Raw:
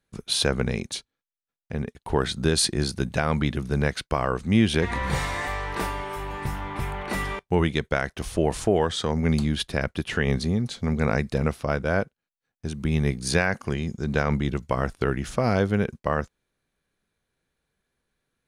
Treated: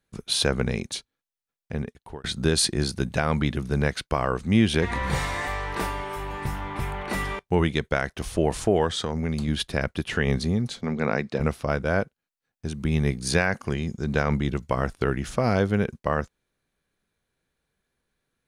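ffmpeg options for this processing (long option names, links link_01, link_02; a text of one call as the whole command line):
ffmpeg -i in.wav -filter_complex "[0:a]asettb=1/sr,asplit=3[link_01][link_02][link_03];[link_01]atrim=end=8.894[link_04];[link_02]atrim=start=8.89:end=9.48,asetpts=PTS-STARTPTS,afade=type=in:duration=0.004:curve=qsin,afade=type=out:start_time=0.586:duration=0.004:curve=qsin,acompressor=threshold=-22dB:ratio=6:attack=3.2:release=140:knee=1:detection=peak[link_05];[link_03]atrim=start=9.476[link_06];[link_04][link_05]acrossfade=duration=0.004:curve1=hsin:curve2=qsin[link_07];[link_07][link_06]acrossfade=duration=0.004:curve1=qsin:curve2=hsin,asettb=1/sr,asplit=3[link_08][link_09][link_10];[link_08]atrim=end=10.814[link_11];[link_09]atrim=start=10.81:end=11.4,asetpts=PTS-STARTPTS,afade=type=in:duration=0.004:curve=qsin,afade=type=out:start_time=0.586:duration=0.004:curve=qsin,highpass=180,lowpass=4900[link_12];[link_10]atrim=start=11.396[link_13];[link_11][link_12]acrossfade=duration=0.004:curve1=hsin:curve2=qsin[link_14];[link_14][link_13]acrossfade=duration=0.004:curve1=qsin:curve2=hsin,asplit=2[link_15][link_16];[link_15]atrim=end=2.24,asetpts=PTS-STARTPTS,afade=type=out:start_time=1.77:duration=0.47[link_17];[link_16]atrim=start=2.24,asetpts=PTS-STARTPTS,afade=type=in:duration=0.004:curve=hsin[link_18];[link_17][link_18]concat=n=2:v=0:a=1" out.wav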